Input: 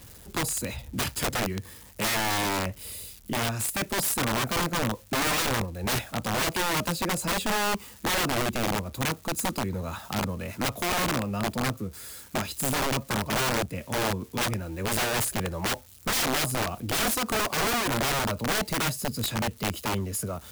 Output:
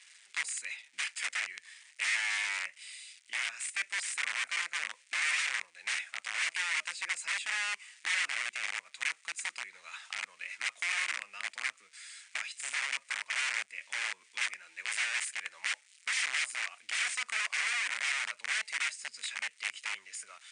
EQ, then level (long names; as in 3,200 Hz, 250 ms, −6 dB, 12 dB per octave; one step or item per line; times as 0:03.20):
dynamic equaliser 4,000 Hz, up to −5 dB, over −43 dBFS, Q 1.1
high-pass with resonance 2,100 Hz, resonance Q 3.2
linear-phase brick-wall low-pass 9,700 Hz
−5.5 dB